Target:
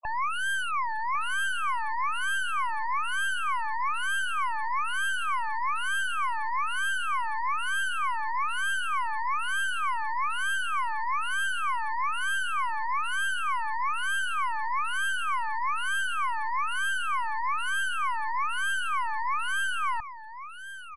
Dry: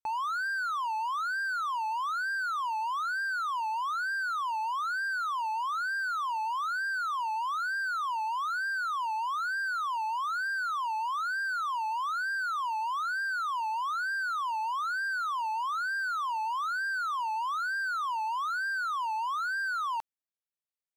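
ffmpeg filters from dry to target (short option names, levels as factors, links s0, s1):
-filter_complex "[0:a]aexciter=amount=5.5:drive=8.7:freq=8900,afftfilt=real='re*gte(hypot(re,im),0.0178)':imag='im*gte(hypot(re,im),0.0178)':win_size=1024:overlap=0.75,acompressor=mode=upward:threshold=0.0178:ratio=2.5,aeval=exprs='clip(val(0),-1,0.00891)':c=same,afftfilt=real='re*gte(hypot(re,im),0.00398)':imag='im*gte(hypot(re,im),0.00398)':win_size=1024:overlap=0.75,aecho=1:1:1.8:0.36,asplit=2[s0][s1];[s1]aecho=0:1:1101:0.237[s2];[s0][s2]amix=inputs=2:normalize=0,volume=1.88" -ar 24000 -c:a libmp3lame -b:a 96k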